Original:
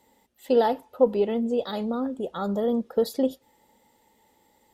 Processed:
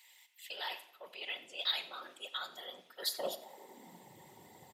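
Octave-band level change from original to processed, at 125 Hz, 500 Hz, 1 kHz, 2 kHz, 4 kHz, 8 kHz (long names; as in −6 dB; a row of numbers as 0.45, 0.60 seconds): below −20 dB, −23.0 dB, −15.0 dB, +0.5 dB, +5.0 dB, can't be measured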